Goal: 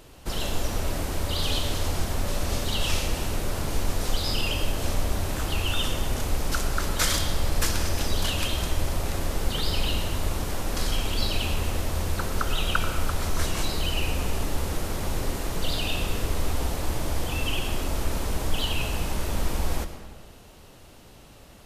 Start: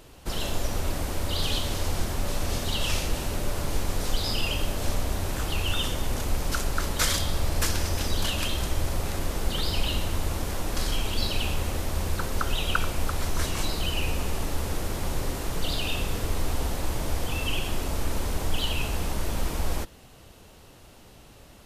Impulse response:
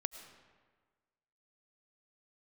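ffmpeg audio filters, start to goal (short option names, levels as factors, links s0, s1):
-filter_complex "[1:a]atrim=start_sample=2205[s0];[0:a][s0]afir=irnorm=-1:irlink=0,volume=1.19"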